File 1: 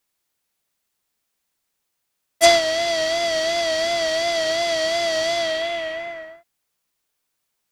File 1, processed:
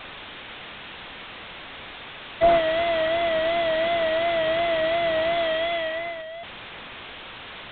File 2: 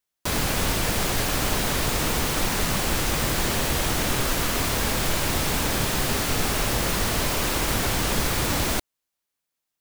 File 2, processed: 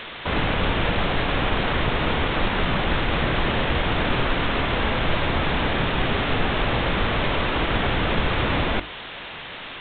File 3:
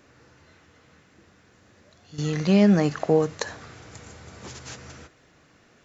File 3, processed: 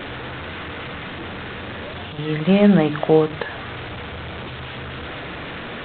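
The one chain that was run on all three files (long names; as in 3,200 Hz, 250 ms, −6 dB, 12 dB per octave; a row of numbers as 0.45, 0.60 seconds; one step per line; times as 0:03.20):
linear delta modulator 32 kbit/s, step −30 dBFS
mains-hum notches 50/100/150/200/250/300/350/400 Hz
G.726 24 kbit/s 8,000 Hz
loudness normalisation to −23 LKFS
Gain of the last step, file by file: 0.0, +3.5, +5.5 decibels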